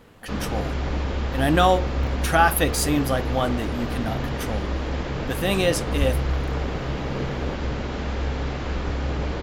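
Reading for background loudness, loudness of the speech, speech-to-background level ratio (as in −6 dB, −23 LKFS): −28.0 LKFS, −24.0 LKFS, 4.0 dB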